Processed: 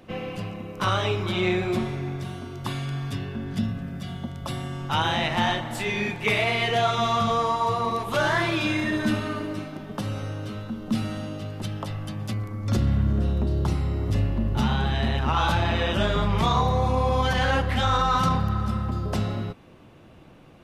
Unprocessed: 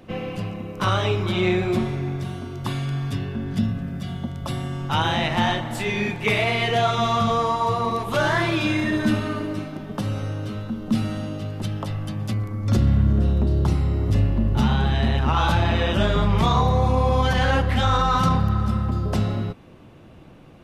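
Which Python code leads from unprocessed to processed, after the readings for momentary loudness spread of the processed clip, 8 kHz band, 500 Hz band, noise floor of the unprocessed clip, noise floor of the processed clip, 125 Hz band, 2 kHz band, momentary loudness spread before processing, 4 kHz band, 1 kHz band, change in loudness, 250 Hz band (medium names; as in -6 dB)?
11 LU, -1.0 dB, -2.5 dB, -46 dBFS, -49 dBFS, -4.5 dB, -1.0 dB, 10 LU, -1.0 dB, -1.5 dB, -3.0 dB, -3.5 dB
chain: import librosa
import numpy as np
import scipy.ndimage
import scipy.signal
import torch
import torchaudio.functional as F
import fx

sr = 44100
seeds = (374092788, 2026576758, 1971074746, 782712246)

y = fx.low_shelf(x, sr, hz=430.0, db=-3.5)
y = y * librosa.db_to_amplitude(-1.0)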